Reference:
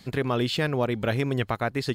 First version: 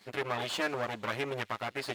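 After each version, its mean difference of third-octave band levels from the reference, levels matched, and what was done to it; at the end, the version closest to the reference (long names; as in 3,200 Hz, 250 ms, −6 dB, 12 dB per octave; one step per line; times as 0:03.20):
7.0 dB: lower of the sound and its delayed copy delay 9.6 ms
high-pass filter 1,100 Hz 6 dB per octave
high-shelf EQ 2,900 Hz −8.5 dB
on a send: delay with a high-pass on its return 82 ms, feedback 75%, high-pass 4,000 Hz, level −19 dB
on the sum: level +1.5 dB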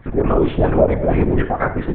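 10.0 dB: harmonic and percussive parts rebalanced harmonic +9 dB
auto-filter low-pass sine 4.5 Hz 610–1,800 Hz
four-comb reverb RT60 0.81 s, combs from 31 ms, DRR 8.5 dB
linear-prediction vocoder at 8 kHz whisper
level +1.5 dB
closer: first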